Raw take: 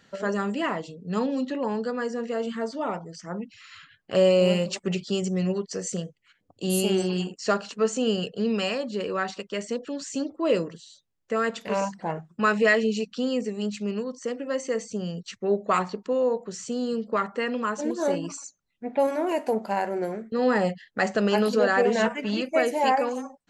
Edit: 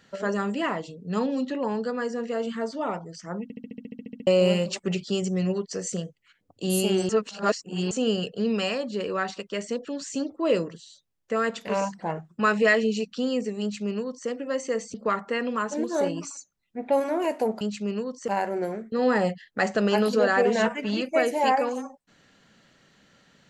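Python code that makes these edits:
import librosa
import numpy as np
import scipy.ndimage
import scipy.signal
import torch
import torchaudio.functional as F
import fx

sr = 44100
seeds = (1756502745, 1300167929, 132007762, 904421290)

y = fx.edit(x, sr, fx.stutter_over(start_s=3.43, slice_s=0.07, count=12),
    fx.reverse_span(start_s=7.09, length_s=0.82),
    fx.duplicate(start_s=13.61, length_s=0.67, to_s=19.68),
    fx.cut(start_s=14.94, length_s=2.07), tone=tone)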